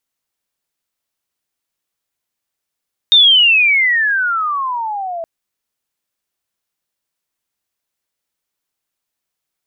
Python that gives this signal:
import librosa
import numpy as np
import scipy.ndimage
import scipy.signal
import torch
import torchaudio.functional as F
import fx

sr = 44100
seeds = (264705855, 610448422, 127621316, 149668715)

y = fx.chirp(sr, length_s=2.12, from_hz=3700.0, to_hz=650.0, law='logarithmic', from_db=-4.5, to_db=-21.0)